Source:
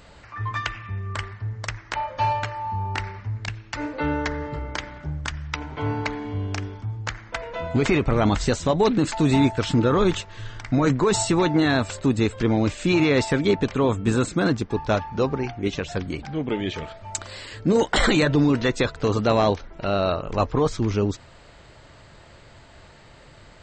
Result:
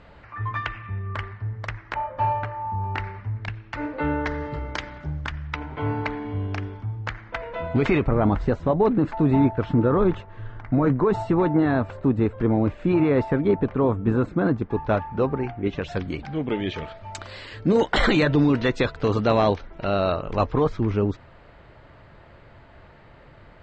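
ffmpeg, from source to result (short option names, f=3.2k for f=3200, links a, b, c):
-af "asetnsamples=n=441:p=0,asendcmd='1.94 lowpass f 1500;2.84 lowpass f 2500;4.27 lowpass f 5200;5.25 lowpass f 2800;8.07 lowpass f 1300;14.62 lowpass f 2000;15.82 lowpass f 3900;20.64 lowpass f 2200',lowpass=2.5k"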